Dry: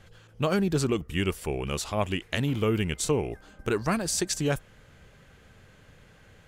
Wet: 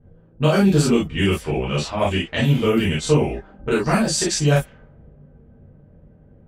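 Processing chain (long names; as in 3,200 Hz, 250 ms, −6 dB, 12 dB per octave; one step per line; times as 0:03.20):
low-pass that shuts in the quiet parts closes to 370 Hz, open at −23 dBFS
reverb whose tail is shaped and stops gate 80 ms flat, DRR −7.5 dB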